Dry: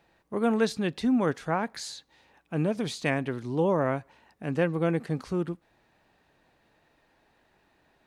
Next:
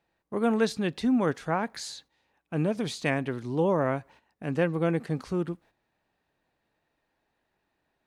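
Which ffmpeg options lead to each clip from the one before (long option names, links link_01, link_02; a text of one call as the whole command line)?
ffmpeg -i in.wav -af "agate=range=-11dB:threshold=-53dB:ratio=16:detection=peak" out.wav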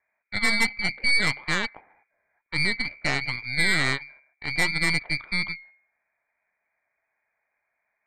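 ffmpeg -i in.wav -af "bandreject=frequency=69.86:width_type=h:width=4,bandreject=frequency=139.72:width_type=h:width=4,bandreject=frequency=209.58:width_type=h:width=4,bandreject=frequency=279.44:width_type=h:width=4,bandreject=frequency=349.3:width_type=h:width=4,bandreject=frequency=419.16:width_type=h:width=4,lowpass=frequency=2100:width_type=q:width=0.5098,lowpass=frequency=2100:width_type=q:width=0.6013,lowpass=frequency=2100:width_type=q:width=0.9,lowpass=frequency=2100:width_type=q:width=2.563,afreqshift=-2500,aeval=exprs='0.251*(cos(1*acos(clip(val(0)/0.251,-1,1)))-cos(1*PI/2))+0.0631*(cos(6*acos(clip(val(0)/0.251,-1,1)))-cos(6*PI/2))':channel_layout=same" out.wav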